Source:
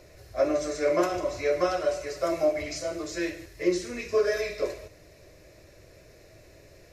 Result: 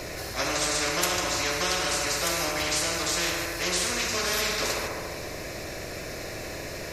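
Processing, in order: feedback echo behind a band-pass 71 ms, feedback 67%, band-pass 720 Hz, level -5 dB; spectrum-flattening compressor 4:1

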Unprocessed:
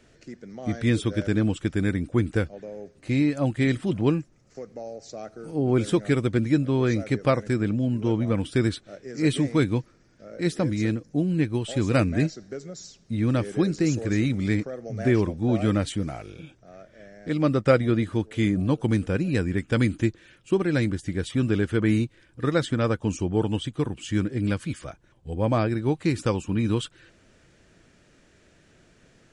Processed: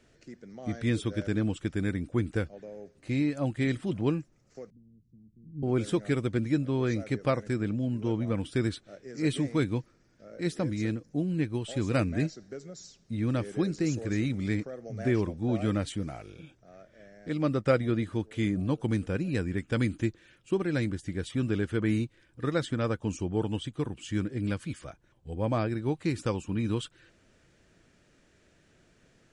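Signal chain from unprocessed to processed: 4.70–5.63 s: inverse Chebyshev low-pass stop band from 570 Hz, stop band 50 dB; trim -5.5 dB

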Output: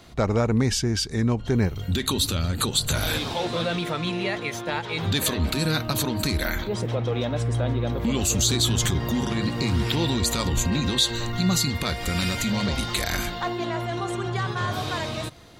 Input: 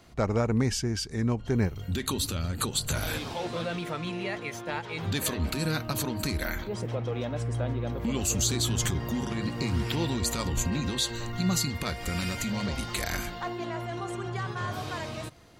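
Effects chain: in parallel at -2 dB: peak limiter -22.5 dBFS, peak gain reduction 8.5 dB; on the sum: peaking EQ 3.7 kHz +6 dB 0.31 oct; trim +1 dB

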